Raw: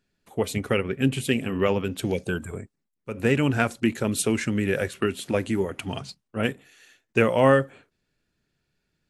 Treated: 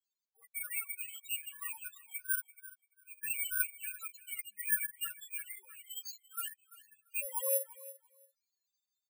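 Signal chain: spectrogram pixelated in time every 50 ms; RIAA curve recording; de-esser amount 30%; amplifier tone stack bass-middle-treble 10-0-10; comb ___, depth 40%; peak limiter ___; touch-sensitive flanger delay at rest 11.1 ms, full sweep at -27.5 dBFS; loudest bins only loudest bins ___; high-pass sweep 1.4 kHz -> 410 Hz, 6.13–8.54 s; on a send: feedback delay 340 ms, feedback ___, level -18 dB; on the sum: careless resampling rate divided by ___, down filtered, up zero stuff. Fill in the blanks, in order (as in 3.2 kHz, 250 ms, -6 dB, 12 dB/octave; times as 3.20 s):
5.3 ms, -18 dBFS, 2, 17%, 4×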